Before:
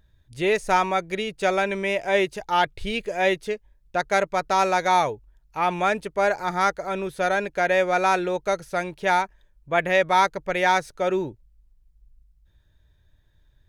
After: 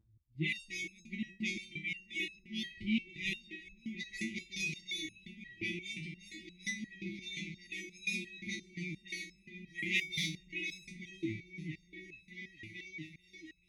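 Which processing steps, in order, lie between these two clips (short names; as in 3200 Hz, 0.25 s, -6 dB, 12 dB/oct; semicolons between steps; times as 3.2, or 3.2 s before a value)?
9.83–10.52 G.711 law mismatch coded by mu; HPF 50 Hz 12 dB/oct; low-pass opened by the level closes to 740 Hz, open at -15.5 dBFS; 1.56–2.2 passive tone stack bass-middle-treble 10-0-10; 4.54–5.64 AM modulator 31 Hz, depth 30%; brick-wall FIR band-stop 360–1900 Hz; repeats that get brighter 0.438 s, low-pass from 200 Hz, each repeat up 1 oct, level -3 dB; stepped resonator 5.7 Hz 110–1300 Hz; gain +6.5 dB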